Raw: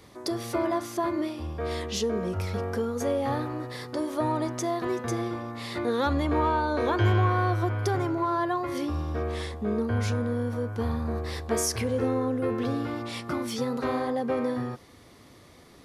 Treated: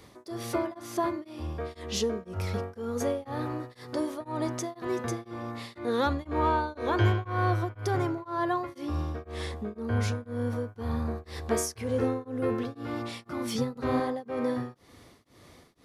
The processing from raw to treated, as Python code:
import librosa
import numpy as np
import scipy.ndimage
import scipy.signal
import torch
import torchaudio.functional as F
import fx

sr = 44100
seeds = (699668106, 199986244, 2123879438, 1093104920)

y = fx.low_shelf(x, sr, hz=190.0, db=11.5, at=(13.55, 14.0))
y = y * np.abs(np.cos(np.pi * 2.0 * np.arange(len(y)) / sr))